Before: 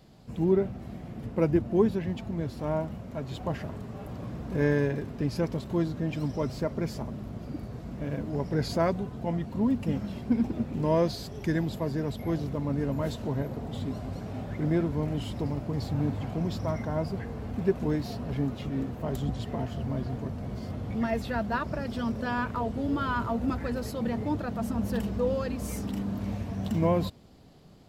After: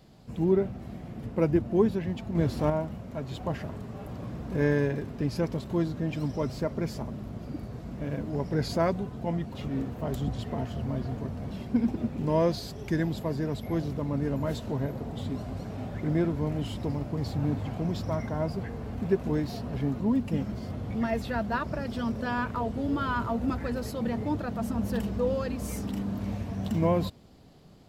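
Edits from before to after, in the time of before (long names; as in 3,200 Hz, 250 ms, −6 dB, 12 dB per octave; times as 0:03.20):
0:02.35–0:02.70: clip gain +6.5 dB
0:09.55–0:10.07: swap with 0:18.56–0:20.52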